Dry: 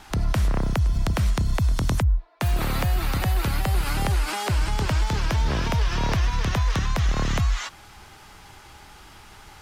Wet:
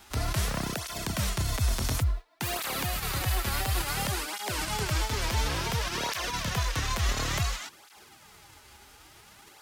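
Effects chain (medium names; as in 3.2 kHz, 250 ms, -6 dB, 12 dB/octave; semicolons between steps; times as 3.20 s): formants flattened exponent 0.6; cancelling through-zero flanger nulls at 0.57 Hz, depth 7 ms; trim -4 dB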